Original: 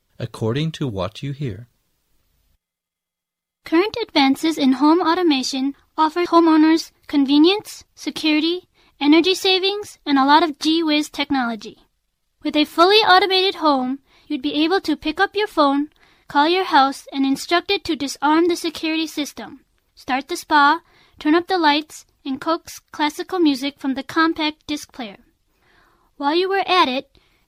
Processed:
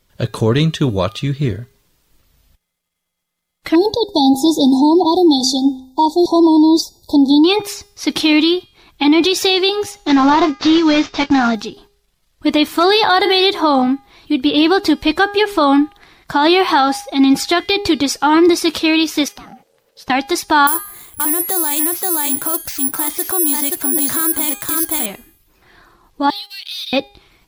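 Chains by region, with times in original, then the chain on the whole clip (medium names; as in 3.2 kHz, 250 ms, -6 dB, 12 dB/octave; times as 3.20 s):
3.75–7.44 s: brick-wall FIR band-stop 1–3.4 kHz + de-hum 259.2 Hz, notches 10
9.97–11.55 s: CVSD coder 32 kbps + doubling 22 ms -13 dB
19.28–20.10 s: compression, threshold -38 dBFS + ring modulator 500 Hz
20.67–25.06 s: delay 527 ms -7 dB + careless resampling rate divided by 4×, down filtered, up zero stuff
26.30–26.93 s: inverse Chebyshev high-pass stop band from 1.1 kHz, stop band 60 dB + waveshaping leveller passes 2 + compression 3:1, threshold -36 dBFS
whole clip: de-hum 406.4 Hz, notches 40; peak limiter -12.5 dBFS; trim +8 dB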